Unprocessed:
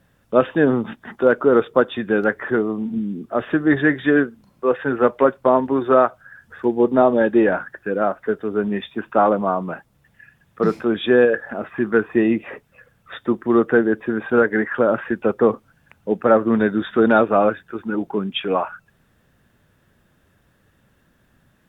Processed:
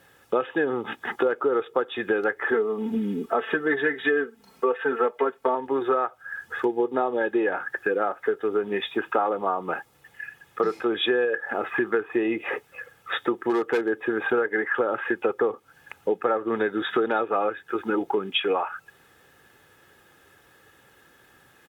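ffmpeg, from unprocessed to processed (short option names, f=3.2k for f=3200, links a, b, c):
-filter_complex "[0:a]asettb=1/sr,asplit=3[a][b][c];[a]atrim=end=2.514[d];[b]atrim=start=2.51:end=5.55,asetpts=PTS-STARTPTS,afade=t=in:d=0.004:c=qsin,afade=t=out:st=3.036:d=0.004:c=qsin,aecho=1:1:4.5:0.88,atrim=end_sample=134064[e];[c]atrim=start=5.546[f];[d][e]acrossfade=d=0.004:c1=hsin:c2=qsin[g];[g][f]acrossfade=d=0.004:c1=qsin:c2=hsin,asplit=3[h][i][j];[h]afade=t=out:st=13.33:d=0.02[k];[i]asoftclip=type=hard:threshold=-11dB,afade=t=in:st=13.33:d=0.02,afade=t=out:st=13.88:d=0.02[l];[j]afade=t=in:st=13.88:d=0.02[m];[k][l][m]amix=inputs=3:normalize=0,highpass=f=490:p=1,aecho=1:1:2.4:0.51,acompressor=threshold=-29dB:ratio=6,volume=7.5dB"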